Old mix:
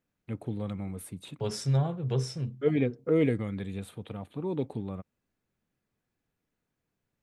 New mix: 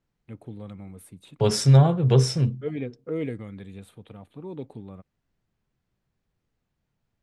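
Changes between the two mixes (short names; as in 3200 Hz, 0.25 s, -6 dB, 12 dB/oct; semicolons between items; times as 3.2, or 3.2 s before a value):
first voice -5.0 dB; second voice +11.0 dB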